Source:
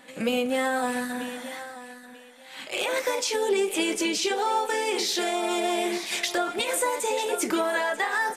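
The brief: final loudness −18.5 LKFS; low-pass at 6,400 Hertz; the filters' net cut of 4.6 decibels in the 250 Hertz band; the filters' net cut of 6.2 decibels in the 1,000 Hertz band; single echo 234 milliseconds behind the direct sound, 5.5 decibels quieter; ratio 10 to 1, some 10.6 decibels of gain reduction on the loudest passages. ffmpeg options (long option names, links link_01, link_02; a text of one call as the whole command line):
ffmpeg -i in.wav -af "lowpass=6400,equalizer=frequency=250:width_type=o:gain=-6,equalizer=frequency=1000:width_type=o:gain=-8,acompressor=threshold=-35dB:ratio=10,aecho=1:1:234:0.531,volume=18.5dB" out.wav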